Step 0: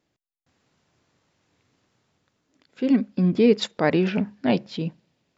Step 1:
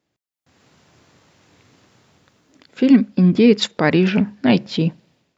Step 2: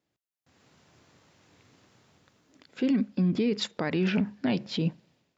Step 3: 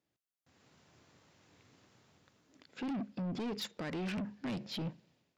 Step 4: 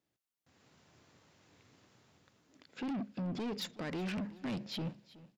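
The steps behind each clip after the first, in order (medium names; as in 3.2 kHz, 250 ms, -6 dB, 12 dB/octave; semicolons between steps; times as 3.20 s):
high-pass 47 Hz; dynamic bell 590 Hz, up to -6 dB, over -30 dBFS, Q 0.96; level rider gain up to 15 dB; trim -1 dB
peak limiter -12 dBFS, peak gain reduction 10 dB; trim -6.5 dB
saturation -30 dBFS, distortion -9 dB; trim -4.5 dB
feedback delay 372 ms, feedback 22%, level -19 dB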